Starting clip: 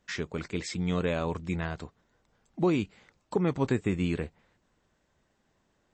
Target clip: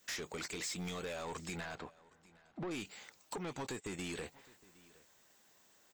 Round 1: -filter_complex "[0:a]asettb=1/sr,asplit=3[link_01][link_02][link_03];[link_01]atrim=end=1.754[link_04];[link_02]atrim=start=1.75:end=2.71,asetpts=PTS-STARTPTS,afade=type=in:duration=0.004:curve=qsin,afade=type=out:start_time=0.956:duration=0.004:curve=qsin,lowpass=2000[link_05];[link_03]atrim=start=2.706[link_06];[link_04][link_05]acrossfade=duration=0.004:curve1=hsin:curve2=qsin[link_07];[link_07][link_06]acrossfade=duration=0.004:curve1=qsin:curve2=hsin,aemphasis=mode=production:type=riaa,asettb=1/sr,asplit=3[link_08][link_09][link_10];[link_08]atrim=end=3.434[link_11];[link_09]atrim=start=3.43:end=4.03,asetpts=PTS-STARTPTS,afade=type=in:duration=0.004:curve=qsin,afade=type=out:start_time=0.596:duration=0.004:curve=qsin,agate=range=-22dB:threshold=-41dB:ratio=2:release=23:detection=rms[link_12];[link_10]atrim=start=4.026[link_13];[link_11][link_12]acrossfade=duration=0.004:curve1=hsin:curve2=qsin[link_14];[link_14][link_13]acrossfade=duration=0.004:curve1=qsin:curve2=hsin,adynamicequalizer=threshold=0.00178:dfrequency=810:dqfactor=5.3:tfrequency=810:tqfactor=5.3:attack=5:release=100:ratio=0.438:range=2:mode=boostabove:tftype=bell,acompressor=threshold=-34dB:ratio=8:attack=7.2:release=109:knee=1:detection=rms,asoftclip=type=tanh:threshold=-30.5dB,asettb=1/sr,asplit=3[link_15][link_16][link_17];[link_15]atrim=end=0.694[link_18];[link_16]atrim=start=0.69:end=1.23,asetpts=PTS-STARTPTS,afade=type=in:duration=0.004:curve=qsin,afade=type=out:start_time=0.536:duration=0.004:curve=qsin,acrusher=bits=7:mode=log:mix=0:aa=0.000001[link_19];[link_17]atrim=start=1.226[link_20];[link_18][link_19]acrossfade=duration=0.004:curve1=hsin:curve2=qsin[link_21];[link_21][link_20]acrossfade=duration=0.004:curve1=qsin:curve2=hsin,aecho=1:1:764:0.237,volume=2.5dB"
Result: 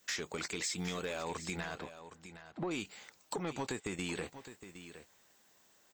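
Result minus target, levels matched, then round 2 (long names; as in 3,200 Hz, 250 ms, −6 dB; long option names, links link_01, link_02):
echo-to-direct +10.5 dB; soft clipping: distortion −8 dB
-filter_complex "[0:a]asettb=1/sr,asplit=3[link_01][link_02][link_03];[link_01]atrim=end=1.754[link_04];[link_02]atrim=start=1.75:end=2.71,asetpts=PTS-STARTPTS,afade=type=in:duration=0.004:curve=qsin,afade=type=out:start_time=0.956:duration=0.004:curve=qsin,lowpass=2000[link_05];[link_03]atrim=start=2.706[link_06];[link_04][link_05]acrossfade=duration=0.004:curve1=hsin:curve2=qsin[link_07];[link_07][link_06]acrossfade=duration=0.004:curve1=qsin:curve2=hsin,aemphasis=mode=production:type=riaa,asettb=1/sr,asplit=3[link_08][link_09][link_10];[link_08]atrim=end=3.434[link_11];[link_09]atrim=start=3.43:end=4.03,asetpts=PTS-STARTPTS,afade=type=in:duration=0.004:curve=qsin,afade=type=out:start_time=0.596:duration=0.004:curve=qsin,agate=range=-22dB:threshold=-41dB:ratio=2:release=23:detection=rms[link_12];[link_10]atrim=start=4.026[link_13];[link_11][link_12]acrossfade=duration=0.004:curve1=hsin:curve2=qsin[link_14];[link_14][link_13]acrossfade=duration=0.004:curve1=qsin:curve2=hsin,adynamicequalizer=threshold=0.00178:dfrequency=810:dqfactor=5.3:tfrequency=810:tqfactor=5.3:attack=5:release=100:ratio=0.438:range=2:mode=boostabove:tftype=bell,acompressor=threshold=-34dB:ratio=8:attack=7.2:release=109:knee=1:detection=rms,asoftclip=type=tanh:threshold=-39dB,asettb=1/sr,asplit=3[link_15][link_16][link_17];[link_15]atrim=end=0.694[link_18];[link_16]atrim=start=0.69:end=1.23,asetpts=PTS-STARTPTS,afade=type=in:duration=0.004:curve=qsin,afade=type=out:start_time=0.536:duration=0.004:curve=qsin,acrusher=bits=7:mode=log:mix=0:aa=0.000001[link_19];[link_17]atrim=start=1.226[link_20];[link_18][link_19]acrossfade=duration=0.004:curve1=hsin:curve2=qsin[link_21];[link_21][link_20]acrossfade=duration=0.004:curve1=qsin:curve2=hsin,aecho=1:1:764:0.0708,volume=2.5dB"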